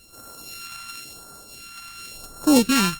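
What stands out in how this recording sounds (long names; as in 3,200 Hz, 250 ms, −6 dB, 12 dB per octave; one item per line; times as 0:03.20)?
a buzz of ramps at a fixed pitch in blocks of 32 samples
phaser sweep stages 2, 0.95 Hz, lowest notch 450–2,500 Hz
Opus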